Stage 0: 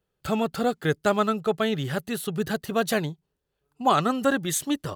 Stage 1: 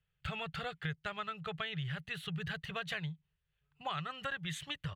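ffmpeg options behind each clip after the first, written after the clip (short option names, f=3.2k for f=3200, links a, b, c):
-af "firequalizer=gain_entry='entry(160,0);entry(230,-28);entry(430,-17);entry(1900,1);entry(3000,1);entry(5000,-14);entry(13000,-25)':delay=0.05:min_phase=1,acompressor=threshold=-36dB:ratio=5"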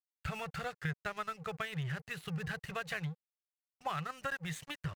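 -af "aeval=exprs='sgn(val(0))*max(abs(val(0))-0.00266,0)':c=same,equalizer=f=3.3k:t=o:w=0.49:g=-9.5,volume=3dB"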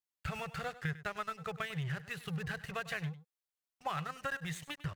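-af "aecho=1:1:100:0.158"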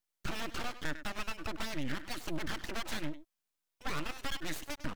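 -af "aeval=exprs='(tanh(56.2*val(0)+0.35)-tanh(0.35))/56.2':c=same,aeval=exprs='abs(val(0))':c=same,volume=7.5dB"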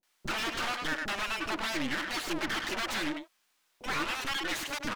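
-filter_complex "[0:a]asplit=2[a][b];[b]highpass=f=720:p=1,volume=27dB,asoftclip=type=tanh:threshold=-24.5dB[c];[a][c]amix=inputs=2:normalize=0,lowpass=f=3.7k:p=1,volume=-6dB,acrossover=split=540[d][e];[e]adelay=30[f];[d][f]amix=inputs=2:normalize=0"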